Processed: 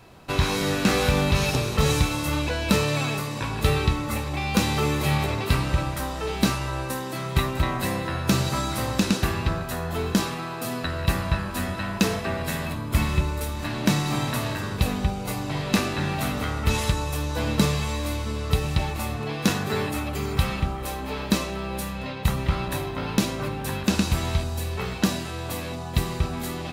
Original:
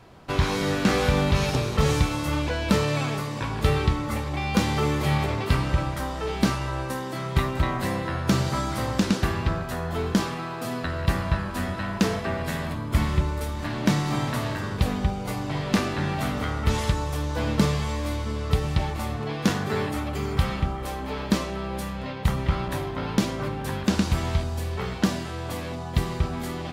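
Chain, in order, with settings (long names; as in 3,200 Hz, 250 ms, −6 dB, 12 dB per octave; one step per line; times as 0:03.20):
high-shelf EQ 7,900 Hz +10 dB
hollow resonant body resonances 2,600/3,900 Hz, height 14 dB, ringing for 85 ms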